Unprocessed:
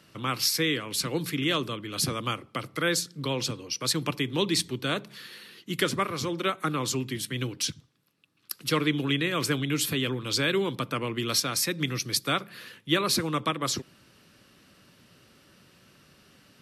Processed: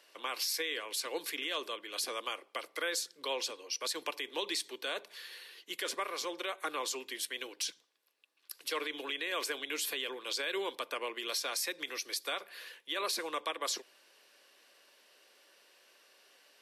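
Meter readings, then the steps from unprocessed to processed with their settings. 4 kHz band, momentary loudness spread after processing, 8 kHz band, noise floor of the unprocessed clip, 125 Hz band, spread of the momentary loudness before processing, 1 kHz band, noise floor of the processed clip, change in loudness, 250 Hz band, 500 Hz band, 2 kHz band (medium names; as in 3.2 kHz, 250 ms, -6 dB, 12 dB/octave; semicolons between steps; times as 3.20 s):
-7.0 dB, 6 LU, -7.5 dB, -60 dBFS, under -40 dB, 7 LU, -7.5 dB, -68 dBFS, -8.5 dB, -18.5 dB, -8.5 dB, -6.5 dB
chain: high-pass 450 Hz 24 dB/octave; band-stop 1.3 kHz, Q 6.6; peak limiter -21.5 dBFS, peak gain reduction 10 dB; trim -3 dB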